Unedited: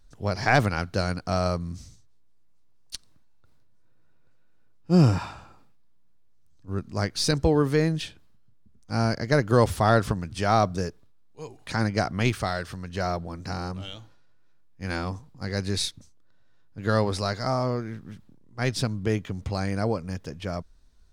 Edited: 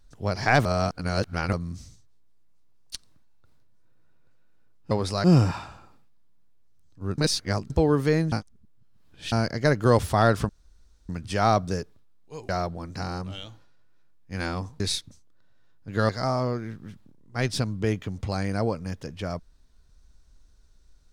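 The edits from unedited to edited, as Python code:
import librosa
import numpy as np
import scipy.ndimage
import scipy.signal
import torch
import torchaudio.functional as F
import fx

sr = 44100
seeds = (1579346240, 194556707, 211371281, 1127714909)

y = fx.edit(x, sr, fx.reverse_span(start_s=0.65, length_s=0.88),
    fx.reverse_span(start_s=6.85, length_s=0.52),
    fx.reverse_span(start_s=7.99, length_s=1.0),
    fx.insert_room_tone(at_s=10.16, length_s=0.6),
    fx.cut(start_s=11.56, length_s=1.43),
    fx.cut(start_s=15.3, length_s=0.4),
    fx.move(start_s=16.99, length_s=0.33, to_s=4.91), tone=tone)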